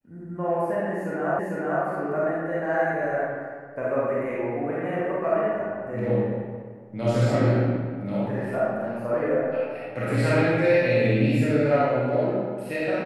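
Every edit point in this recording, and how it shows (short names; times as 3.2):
1.39 repeat of the last 0.45 s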